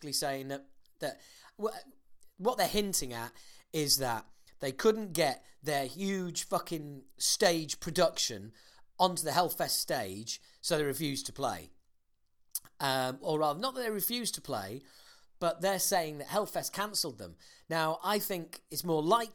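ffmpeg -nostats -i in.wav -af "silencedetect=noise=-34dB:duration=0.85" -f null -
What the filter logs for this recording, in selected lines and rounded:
silence_start: 11.58
silence_end: 12.55 | silence_duration: 0.97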